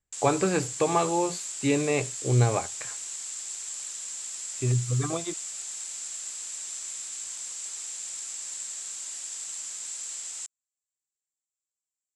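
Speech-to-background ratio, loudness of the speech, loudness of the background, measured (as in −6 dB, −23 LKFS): 7.0 dB, −27.0 LKFS, −34.0 LKFS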